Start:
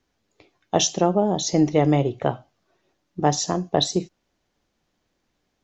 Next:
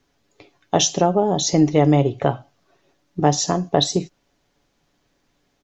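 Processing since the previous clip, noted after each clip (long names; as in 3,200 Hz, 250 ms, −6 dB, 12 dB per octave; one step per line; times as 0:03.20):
comb filter 7.1 ms, depth 35%
in parallel at +1.5 dB: downward compressor, threshold −24 dBFS, peak gain reduction 12.5 dB
on the sum: level −1 dB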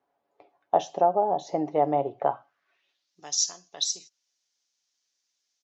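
band-pass filter sweep 750 Hz → 5,800 Hz, 0:02.22–0:03.18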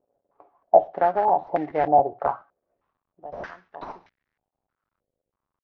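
variable-slope delta modulation 32 kbit/s
regular buffer underruns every 0.14 s, samples 512, repeat, from 0:00.85
low-pass on a step sequencer 3.2 Hz 540–1,900 Hz
level −1 dB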